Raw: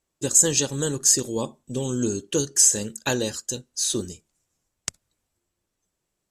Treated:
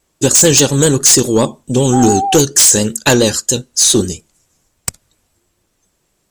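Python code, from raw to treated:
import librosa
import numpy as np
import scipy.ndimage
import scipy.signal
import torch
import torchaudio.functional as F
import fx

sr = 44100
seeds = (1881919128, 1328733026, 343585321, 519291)

y = fx.dmg_tone(x, sr, hz=780.0, level_db=-29.0, at=(1.92, 2.35), fade=0.02)
y = fx.fold_sine(y, sr, drive_db=11, ceiling_db=-4.5)
y = fx.vibrato(y, sr, rate_hz=7.2, depth_cents=52.0)
y = F.gain(torch.from_numpy(y), 1.0).numpy()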